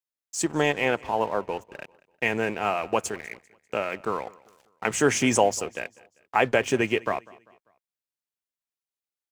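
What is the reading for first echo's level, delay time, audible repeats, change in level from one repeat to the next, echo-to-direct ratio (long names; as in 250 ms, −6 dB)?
−23.0 dB, 197 ms, 2, −8.0 dB, −22.0 dB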